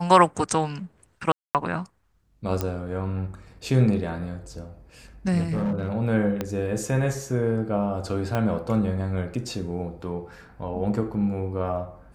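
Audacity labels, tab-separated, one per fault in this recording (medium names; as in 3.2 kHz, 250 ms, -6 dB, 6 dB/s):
1.320000	1.550000	dropout 228 ms
2.610000	2.610000	pop -12 dBFS
5.400000	5.890000	clipped -21.5 dBFS
6.410000	6.410000	pop -13 dBFS
8.350000	8.350000	pop -13 dBFS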